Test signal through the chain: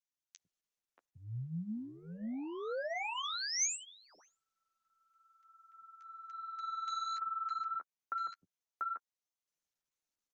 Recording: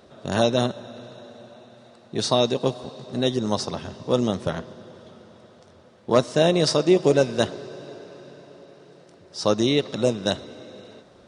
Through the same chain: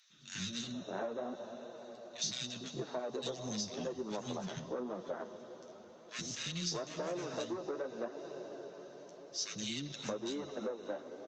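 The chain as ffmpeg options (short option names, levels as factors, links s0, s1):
-filter_complex "[0:a]aresample=16000,asoftclip=type=tanh:threshold=0.106,aresample=44100,lowshelf=f=110:g=-2.5,flanger=delay=5.6:depth=8.4:regen=9:speed=0.92:shape=triangular,highpass=80,acrossover=split=230|1800[s0][s1][s2];[s0]adelay=100[s3];[s1]adelay=630[s4];[s3][s4][s2]amix=inputs=3:normalize=0,acrossover=split=120|2100[s5][s6][s7];[s5]acrusher=bits=3:mix=0:aa=0.5[s8];[s8][s6][s7]amix=inputs=3:normalize=0,acompressor=threshold=0.0224:ratio=16,equalizer=f=6200:w=7.5:g=10.5,volume=0.794" -ar 48000 -c:a libopus -b:a 48k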